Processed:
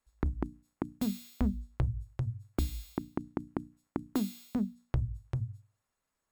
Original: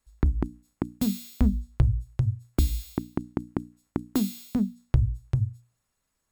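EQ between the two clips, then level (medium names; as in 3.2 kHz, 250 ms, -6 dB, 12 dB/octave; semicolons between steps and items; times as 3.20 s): bass shelf 340 Hz -9 dB; treble shelf 2.2 kHz -9 dB; hum notches 50/100/150 Hz; 0.0 dB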